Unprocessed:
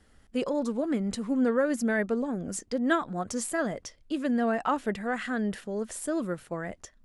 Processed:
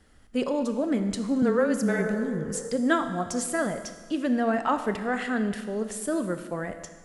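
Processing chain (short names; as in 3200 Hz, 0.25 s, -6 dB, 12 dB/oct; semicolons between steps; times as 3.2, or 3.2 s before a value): 1.42–2.51 frequency shift -21 Hz; 1.94–2.67 spectral repair 410–1900 Hz both; Schroeder reverb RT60 1.5 s, combs from 25 ms, DRR 8.5 dB; gain +2 dB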